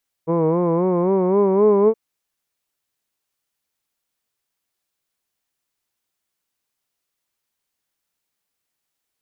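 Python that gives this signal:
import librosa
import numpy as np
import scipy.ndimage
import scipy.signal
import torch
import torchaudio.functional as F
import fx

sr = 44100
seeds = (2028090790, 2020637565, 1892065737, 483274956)

y = fx.vowel(sr, seeds[0], length_s=1.67, word='hood', hz=160.0, glide_st=5.0, vibrato_hz=3.8, vibrato_st=0.85)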